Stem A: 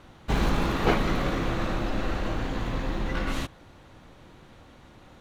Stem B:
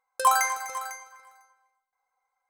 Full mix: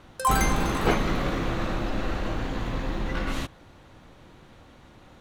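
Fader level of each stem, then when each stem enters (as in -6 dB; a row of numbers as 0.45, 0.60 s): 0.0, -3.0 dB; 0.00, 0.00 s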